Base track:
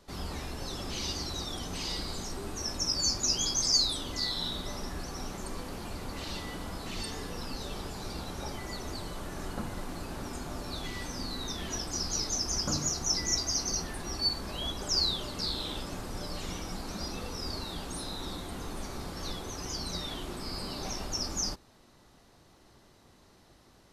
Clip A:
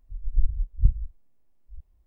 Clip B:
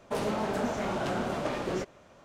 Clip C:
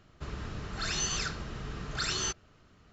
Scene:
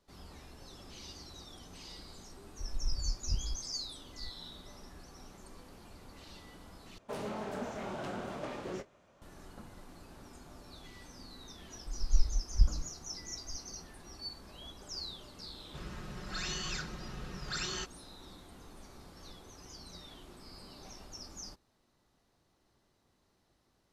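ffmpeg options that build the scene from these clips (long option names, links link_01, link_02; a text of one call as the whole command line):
ffmpeg -i bed.wav -i cue0.wav -i cue1.wav -i cue2.wav -filter_complex "[1:a]asplit=2[link_01][link_02];[0:a]volume=-14dB[link_03];[link_01]acompressor=threshold=-22dB:ratio=6:attack=3.2:release=140:knee=1:detection=peak[link_04];[2:a]asplit=2[link_05][link_06];[link_06]adelay=27,volume=-13dB[link_07];[link_05][link_07]amix=inputs=2:normalize=0[link_08];[link_02]aecho=1:1:3.6:0.7[link_09];[3:a]aecho=1:1:5.5:0.7[link_10];[link_03]asplit=2[link_11][link_12];[link_11]atrim=end=6.984[link_13];[link_08]atrim=end=2.24,asetpts=PTS-STARTPTS,volume=-9dB[link_14];[link_12]atrim=start=9.216[link_15];[link_04]atrim=end=2.06,asetpts=PTS-STARTPTS,volume=-4.5dB,afade=type=in:duration=0.004:curve=hsin,afade=type=out:start_time=2.056:duration=0.004:curve=hsin,adelay=2490[link_16];[link_09]atrim=end=2.06,asetpts=PTS-STARTPTS,volume=-8.5dB,afade=type=in:duration=0.004:curve=hsin,afade=type=out:start_time=2.056:duration=0.004:curve=hsin,adelay=11760[link_17];[link_10]atrim=end=2.92,asetpts=PTS-STARTPTS,volume=-6.5dB,afade=type=in:duration=0.004:curve=hsin,afade=type=out:start_time=2.916:duration=0.004:curve=hsin,adelay=15530[link_18];[link_13][link_14]acrossfade=duration=0.004:curve1=hsin:curve2=hsin[link_19];[link_19][link_15]acrossfade=duration=0.004:curve1=hsin:curve2=hsin[link_20];[link_20][link_16][link_17][link_18]amix=inputs=4:normalize=0" out.wav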